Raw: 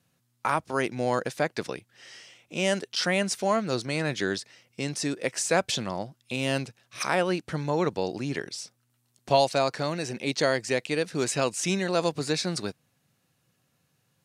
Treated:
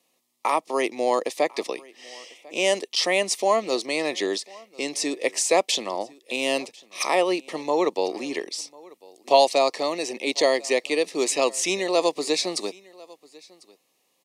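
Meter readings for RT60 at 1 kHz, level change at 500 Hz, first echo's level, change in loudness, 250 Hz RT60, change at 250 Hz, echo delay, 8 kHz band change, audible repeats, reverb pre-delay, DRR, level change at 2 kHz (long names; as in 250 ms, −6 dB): no reverb audible, +5.0 dB, −24.0 dB, +4.0 dB, no reverb audible, 0.0 dB, 1,047 ms, +5.0 dB, 1, no reverb audible, no reverb audible, +1.5 dB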